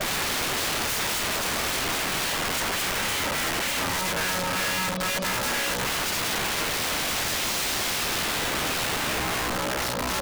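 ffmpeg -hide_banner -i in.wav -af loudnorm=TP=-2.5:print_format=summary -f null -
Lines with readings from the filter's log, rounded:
Input Integrated:    -25.0 LUFS
Input True Peak:     -17.2 dBTP
Input LRA:             0.5 LU
Input Threshold:     -35.0 LUFS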